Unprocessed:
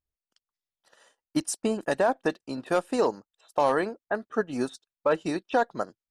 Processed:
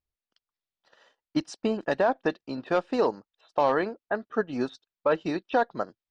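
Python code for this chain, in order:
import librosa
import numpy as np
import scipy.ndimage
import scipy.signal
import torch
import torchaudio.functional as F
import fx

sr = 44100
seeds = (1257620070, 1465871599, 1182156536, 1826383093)

y = scipy.signal.sosfilt(scipy.signal.butter(4, 5000.0, 'lowpass', fs=sr, output='sos'), x)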